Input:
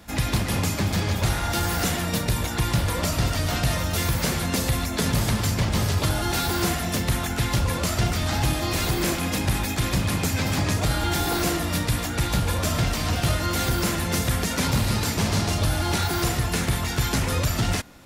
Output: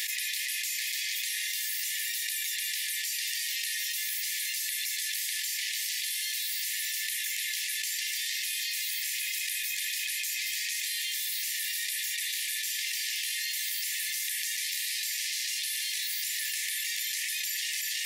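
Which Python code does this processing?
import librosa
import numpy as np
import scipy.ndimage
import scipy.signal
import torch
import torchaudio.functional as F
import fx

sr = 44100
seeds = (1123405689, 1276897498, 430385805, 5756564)

y = fx.brickwall_highpass(x, sr, low_hz=1700.0)
y = fx.high_shelf(y, sr, hz=11000.0, db=7.5)
y = y + 10.0 ** (-11.0 / 20.0) * np.pad(y, (int(323 * sr / 1000.0), 0))[:len(y)]
y = fx.env_flatten(y, sr, amount_pct=100)
y = y * librosa.db_to_amplitude(-8.5)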